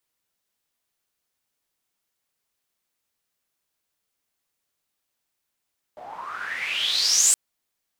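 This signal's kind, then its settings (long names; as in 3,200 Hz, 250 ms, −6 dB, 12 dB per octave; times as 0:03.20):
filter sweep on noise pink, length 1.37 s bandpass, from 650 Hz, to 8,100 Hz, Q 8.6, exponential, gain ramp +25 dB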